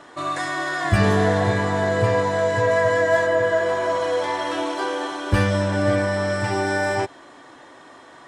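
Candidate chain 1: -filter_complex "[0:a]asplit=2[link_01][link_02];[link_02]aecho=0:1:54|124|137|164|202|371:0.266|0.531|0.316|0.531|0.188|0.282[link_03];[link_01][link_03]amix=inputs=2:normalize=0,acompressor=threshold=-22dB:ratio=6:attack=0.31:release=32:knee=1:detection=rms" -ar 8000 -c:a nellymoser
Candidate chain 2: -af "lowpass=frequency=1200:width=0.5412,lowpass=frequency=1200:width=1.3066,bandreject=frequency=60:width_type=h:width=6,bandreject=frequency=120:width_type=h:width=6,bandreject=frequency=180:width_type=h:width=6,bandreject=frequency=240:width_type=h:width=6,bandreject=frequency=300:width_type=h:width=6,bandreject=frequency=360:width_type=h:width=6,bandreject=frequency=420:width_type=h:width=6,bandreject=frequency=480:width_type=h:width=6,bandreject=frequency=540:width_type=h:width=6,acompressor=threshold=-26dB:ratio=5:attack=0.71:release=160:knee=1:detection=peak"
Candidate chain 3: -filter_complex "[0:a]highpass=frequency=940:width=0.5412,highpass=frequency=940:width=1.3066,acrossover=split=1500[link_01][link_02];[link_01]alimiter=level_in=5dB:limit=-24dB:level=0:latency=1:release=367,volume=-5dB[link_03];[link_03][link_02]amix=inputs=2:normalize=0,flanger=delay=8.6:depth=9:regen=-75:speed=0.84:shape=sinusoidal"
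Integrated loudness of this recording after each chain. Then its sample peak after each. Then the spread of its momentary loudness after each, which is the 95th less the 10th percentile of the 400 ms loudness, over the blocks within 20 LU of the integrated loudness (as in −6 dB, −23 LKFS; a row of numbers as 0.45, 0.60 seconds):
−27.5, −31.0, −33.5 LKFS; −18.0, −20.5, −20.0 dBFS; 4, 11, 15 LU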